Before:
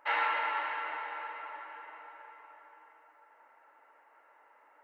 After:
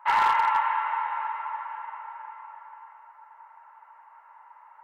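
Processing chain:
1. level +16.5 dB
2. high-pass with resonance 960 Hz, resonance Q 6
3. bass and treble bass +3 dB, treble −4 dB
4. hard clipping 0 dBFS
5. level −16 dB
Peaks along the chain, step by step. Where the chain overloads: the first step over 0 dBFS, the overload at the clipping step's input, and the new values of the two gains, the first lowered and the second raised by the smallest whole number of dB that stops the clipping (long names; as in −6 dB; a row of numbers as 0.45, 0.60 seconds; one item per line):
−2.5, +6.5, +6.5, 0.0, −16.0 dBFS
step 2, 6.5 dB
step 1 +9.5 dB, step 5 −9 dB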